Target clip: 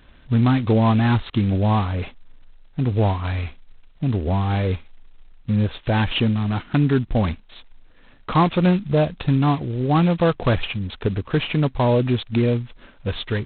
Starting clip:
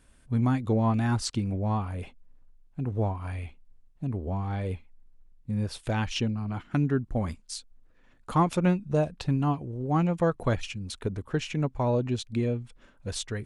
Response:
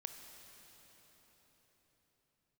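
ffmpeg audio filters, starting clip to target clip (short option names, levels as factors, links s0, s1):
-filter_complex "[0:a]asplit=2[s0][s1];[s1]alimiter=limit=0.075:level=0:latency=1:release=10,volume=1.33[s2];[s0][s2]amix=inputs=2:normalize=0,volume=1.33" -ar 8000 -c:a adpcm_g726 -b:a 16k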